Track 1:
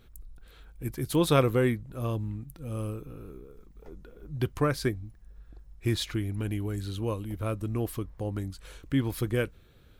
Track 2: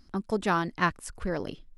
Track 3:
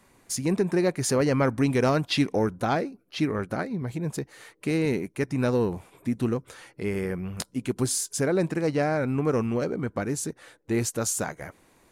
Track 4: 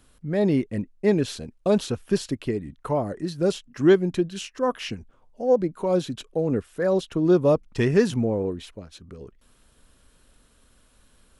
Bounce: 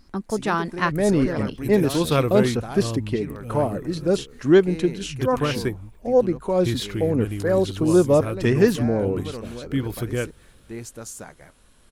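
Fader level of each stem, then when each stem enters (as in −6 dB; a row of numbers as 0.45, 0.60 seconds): +2.0, +3.0, −9.5, +2.0 decibels; 0.80, 0.00, 0.00, 0.65 seconds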